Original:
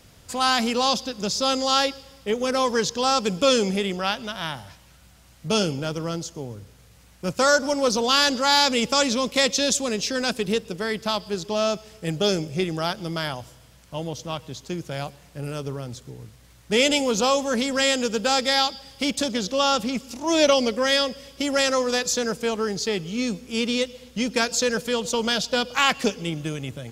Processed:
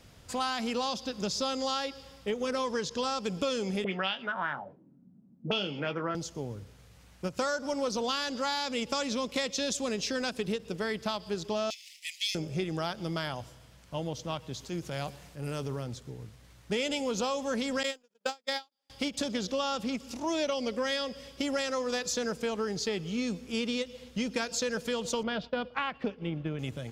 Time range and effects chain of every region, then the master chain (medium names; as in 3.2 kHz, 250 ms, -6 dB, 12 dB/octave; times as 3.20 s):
2.45–3.18 s: low-pass 12 kHz 24 dB/octave + band-stop 770 Hz, Q 17
3.84–6.15 s: high-pass 160 Hz 24 dB/octave + doubling 21 ms -9 dB + touch-sensitive low-pass 210–3100 Hz up, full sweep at -22.5 dBFS
11.70–12.35 s: waveshaping leveller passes 2 + steep high-pass 2 kHz 96 dB/octave
14.53–15.83 s: treble shelf 4.9 kHz +4.5 dB + transient shaper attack -6 dB, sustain +3 dB
17.83–18.90 s: jump at every zero crossing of -30.5 dBFS + high-pass 270 Hz + gate -23 dBFS, range -46 dB
25.23–26.59 s: expander -32 dBFS + distance through air 390 m
whole clip: treble shelf 7.1 kHz -7 dB; compression, threshold -25 dBFS; endings held to a fixed fall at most 370 dB/s; trim -3 dB